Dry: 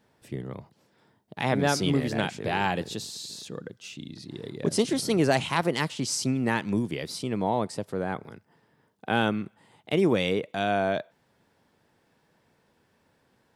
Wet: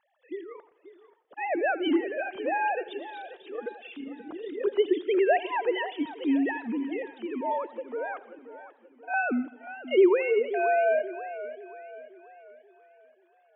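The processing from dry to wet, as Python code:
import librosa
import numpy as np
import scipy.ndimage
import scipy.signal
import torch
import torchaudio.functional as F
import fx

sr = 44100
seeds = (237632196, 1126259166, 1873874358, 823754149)

y = fx.sine_speech(x, sr)
y = fx.harmonic_tremolo(y, sr, hz=1.6, depth_pct=50, crossover_hz=600.0, at=(6.51, 9.14))
y = fx.echo_feedback(y, sr, ms=83, feedback_pct=56, wet_db=-19)
y = fx.echo_warbled(y, sr, ms=532, feedback_pct=45, rate_hz=2.8, cents=99, wet_db=-14.0)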